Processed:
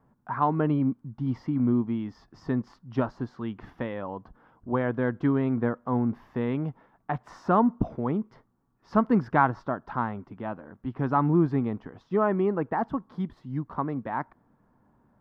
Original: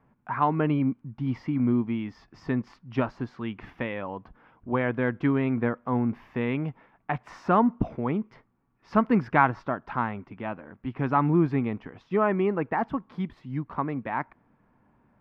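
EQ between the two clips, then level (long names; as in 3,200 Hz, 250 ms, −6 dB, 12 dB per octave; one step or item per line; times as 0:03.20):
parametric band 2,400 Hz −11.5 dB 0.71 octaves
0.0 dB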